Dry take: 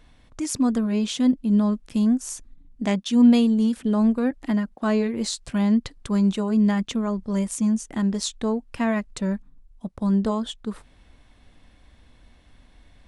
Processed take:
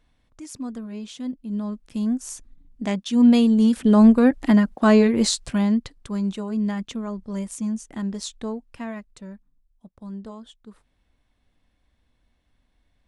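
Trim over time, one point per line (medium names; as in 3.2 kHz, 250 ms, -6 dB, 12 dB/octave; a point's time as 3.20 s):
1.32 s -11 dB
2.26 s -2 dB
3.04 s -2 dB
3.98 s +7 dB
5.24 s +7 dB
5.98 s -5 dB
8.44 s -5 dB
9.33 s -14.5 dB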